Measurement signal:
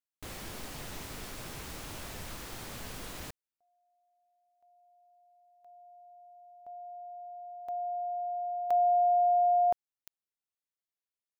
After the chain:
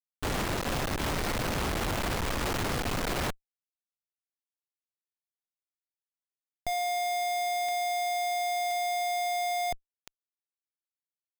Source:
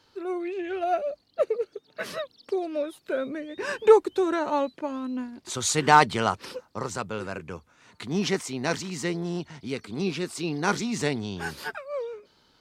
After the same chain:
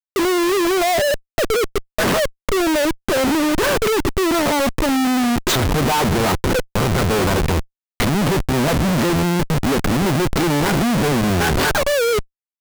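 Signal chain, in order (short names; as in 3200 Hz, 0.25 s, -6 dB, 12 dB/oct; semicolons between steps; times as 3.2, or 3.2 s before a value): treble ducked by the level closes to 1200 Hz, closed at -25.5 dBFS; sample leveller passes 5; Schmitt trigger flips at -27.5 dBFS; gain -1.5 dB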